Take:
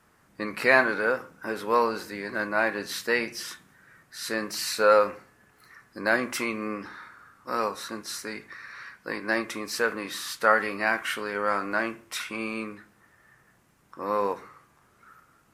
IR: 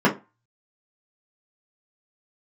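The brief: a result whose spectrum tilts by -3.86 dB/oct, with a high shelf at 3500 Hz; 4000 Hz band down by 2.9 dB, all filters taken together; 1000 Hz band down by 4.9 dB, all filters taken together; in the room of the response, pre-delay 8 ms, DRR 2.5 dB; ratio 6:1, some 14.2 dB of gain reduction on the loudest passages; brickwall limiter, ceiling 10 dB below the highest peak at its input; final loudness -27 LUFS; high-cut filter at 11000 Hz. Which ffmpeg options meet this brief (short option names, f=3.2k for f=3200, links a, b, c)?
-filter_complex "[0:a]lowpass=11k,equalizer=f=1k:t=o:g=-7,highshelf=f=3.5k:g=7,equalizer=f=4k:t=o:g=-8.5,acompressor=threshold=-32dB:ratio=6,alimiter=level_in=5dB:limit=-24dB:level=0:latency=1,volume=-5dB,asplit=2[a][b];[1:a]atrim=start_sample=2205,adelay=8[c];[b][c]afir=irnorm=-1:irlink=0,volume=-22dB[d];[a][d]amix=inputs=2:normalize=0,volume=10dB"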